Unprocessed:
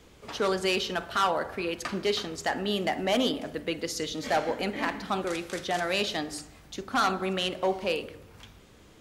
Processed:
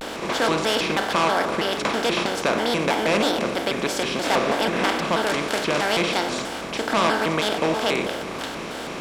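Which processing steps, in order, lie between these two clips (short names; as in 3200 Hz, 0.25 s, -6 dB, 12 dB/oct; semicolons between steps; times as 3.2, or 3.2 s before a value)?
per-bin compression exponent 0.4; crossover distortion -53.5 dBFS; shaped vibrato square 3.1 Hz, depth 250 cents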